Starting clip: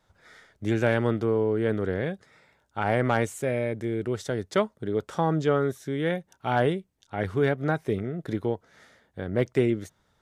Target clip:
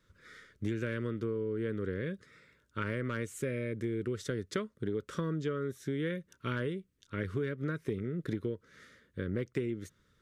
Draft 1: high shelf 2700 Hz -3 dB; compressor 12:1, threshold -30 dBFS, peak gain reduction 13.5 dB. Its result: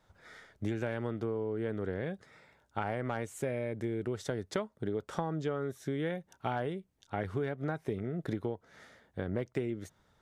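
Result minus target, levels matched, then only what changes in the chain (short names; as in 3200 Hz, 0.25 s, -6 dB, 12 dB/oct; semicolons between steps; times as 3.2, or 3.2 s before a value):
1000 Hz band +6.5 dB
add first: Butterworth band-stop 770 Hz, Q 1.2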